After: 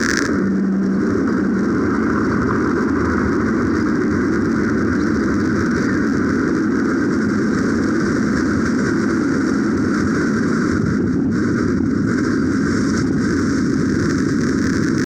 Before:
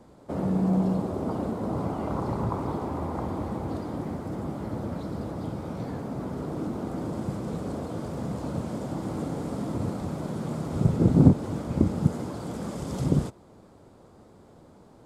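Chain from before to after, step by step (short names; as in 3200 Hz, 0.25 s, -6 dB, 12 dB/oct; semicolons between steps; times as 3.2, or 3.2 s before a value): notch comb 830 Hz; on a send: diffused feedback echo 0.664 s, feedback 58%, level -8 dB; on the sum: pitch shift +0.5 st; crackle 91/s -36 dBFS; EQ curve 100 Hz 0 dB, 150 Hz -7 dB, 230 Hz +6 dB, 380 Hz +3 dB, 710 Hz -19 dB, 1700 Hz +12 dB, 2900 Hz -16 dB, 5700 Hz +10 dB, 8400 Hz -7 dB, 12000 Hz -18 dB; AGC gain up to 14 dB; notches 60/120/180/240 Hz; in parallel at -7 dB: hard clip -13.5 dBFS, distortion -12 dB; on the sum: bell 1600 Hz +7 dB 0.87 oct; fast leveller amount 100%; gain -10 dB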